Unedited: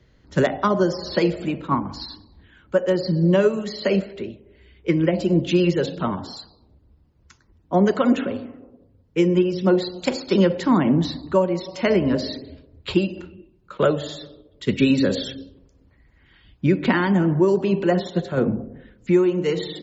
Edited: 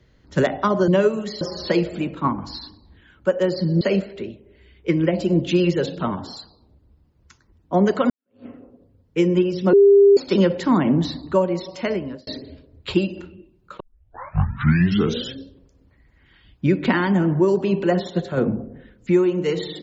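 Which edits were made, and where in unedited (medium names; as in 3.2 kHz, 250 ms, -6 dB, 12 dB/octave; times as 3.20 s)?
3.28–3.81 s: move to 0.88 s
8.10–8.46 s: fade in exponential
9.73–10.17 s: bleep 400 Hz -8 dBFS
11.63–12.27 s: fade out linear
13.80 s: tape start 1.55 s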